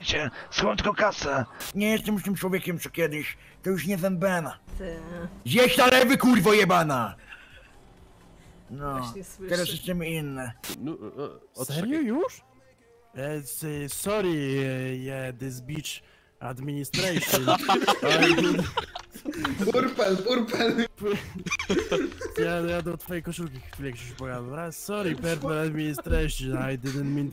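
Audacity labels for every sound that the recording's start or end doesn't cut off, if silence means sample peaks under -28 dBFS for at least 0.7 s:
8.820000	12.270000	sound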